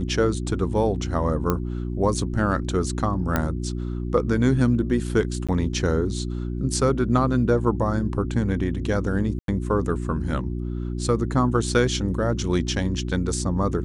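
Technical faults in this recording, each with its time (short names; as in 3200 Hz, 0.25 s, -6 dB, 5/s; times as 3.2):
hum 60 Hz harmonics 6 -28 dBFS
1.5 pop -9 dBFS
3.36 pop -8 dBFS
5.47–5.49 gap 16 ms
9.39–9.48 gap 92 ms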